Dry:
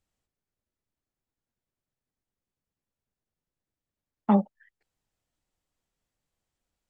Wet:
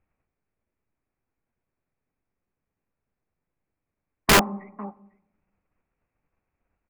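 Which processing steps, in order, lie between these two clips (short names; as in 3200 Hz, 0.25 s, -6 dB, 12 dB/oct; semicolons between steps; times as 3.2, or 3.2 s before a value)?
formant shift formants +3 st; in parallel at +1 dB: level quantiser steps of 12 dB; on the sum: elliptic low-pass 2500 Hz; echo 0.499 s -22.5 dB; on a send at -16 dB: reverb RT60 0.85 s, pre-delay 3 ms; on the sum: wrapped overs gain 12.5 dB; gain +3 dB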